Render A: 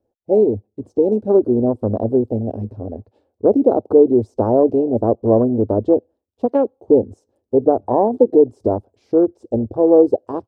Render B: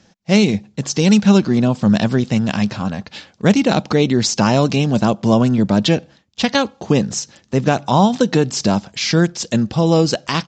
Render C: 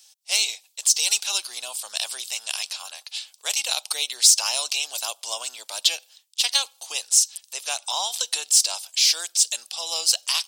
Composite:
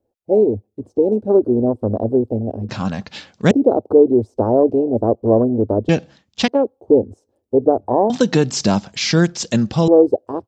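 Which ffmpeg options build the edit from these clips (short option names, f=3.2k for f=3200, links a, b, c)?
-filter_complex "[1:a]asplit=3[a][b][c];[0:a]asplit=4[d][e][f][g];[d]atrim=end=2.692[h];[a]atrim=start=2.688:end=3.512[i];[e]atrim=start=3.508:end=5.892[j];[b]atrim=start=5.888:end=6.482[k];[f]atrim=start=6.478:end=8.102[l];[c]atrim=start=8.098:end=9.882[m];[g]atrim=start=9.878[n];[h][i]acrossfade=d=0.004:c1=hsin:c2=hsin[o];[o][j]acrossfade=d=0.004:c1=hsin:c2=hsin[p];[p][k]acrossfade=d=0.004:c1=hsin:c2=hsin[q];[q][l]acrossfade=d=0.004:c1=hsin:c2=hsin[r];[r][m]acrossfade=d=0.004:c1=hsin:c2=hsin[s];[s][n]acrossfade=d=0.004:c1=hsin:c2=hsin"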